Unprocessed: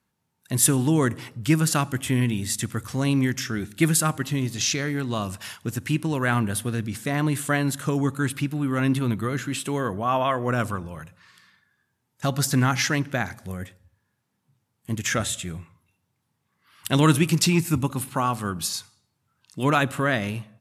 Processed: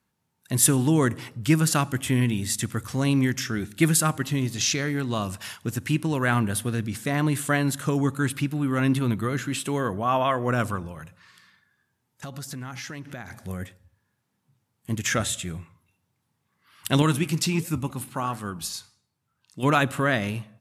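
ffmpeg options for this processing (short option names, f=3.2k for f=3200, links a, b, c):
-filter_complex "[0:a]asettb=1/sr,asplit=3[a][b][c];[a]atrim=end=10.914[d];[b]atrim=start=10.91:end=13.39,asetpts=PTS-STARTPTS,afade=t=in:d=0.004:c=qsin,afade=t=out:st=2.476:d=0.004:c=qsin,acompressor=threshold=-34dB:ratio=6:attack=3.2:release=140:knee=1:detection=peak[e];[c]atrim=start=13.386[f];[d][e]acrossfade=d=0.004:c1=hsin:c2=qsin[g];[g][f]acrossfade=d=0.004:c1=qsin:c2=hsin,asettb=1/sr,asplit=3[h][i][j];[h]atrim=end=17.024[k];[i]atrim=start=17.02:end=19.63,asetpts=PTS-STARTPTS,afade=t=in:d=0.004:c=qsin,afade=t=out:st=2.606:d=0.004:c=qsin,flanger=delay=4:depth=7:regen=-88:speed=1.4:shape=sinusoidal[l];[j]atrim=start=19.626[m];[k][l]acrossfade=d=0.004:c1=hsin:c2=qsin[n];[n][m]acrossfade=d=0.004:c1=qsin:c2=hsin"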